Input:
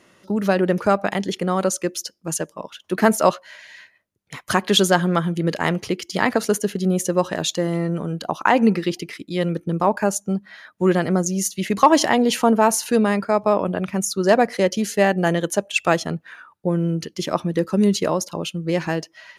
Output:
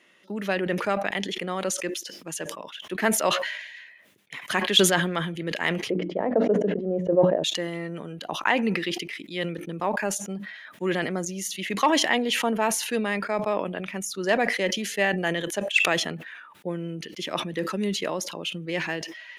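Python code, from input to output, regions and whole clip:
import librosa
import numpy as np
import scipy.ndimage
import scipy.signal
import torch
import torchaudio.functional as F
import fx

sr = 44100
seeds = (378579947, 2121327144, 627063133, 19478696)

y = fx.chain(x, sr, fx.lowpass_res(hz=580.0, q=2.9),
    fx.hum_notches(base_hz=60, count=5),
    fx.sustainer(db_per_s=140.0), at=(5.9, 7.44))
y = scipy.signal.sosfilt(scipy.signal.butter(2, 200.0, 'highpass', fs=sr, output='sos'), y)
y = fx.band_shelf(y, sr, hz=2500.0, db=8.5, octaves=1.3)
y = fx.sustainer(y, sr, db_per_s=54.0)
y = F.gain(torch.from_numpy(y), -8.5).numpy()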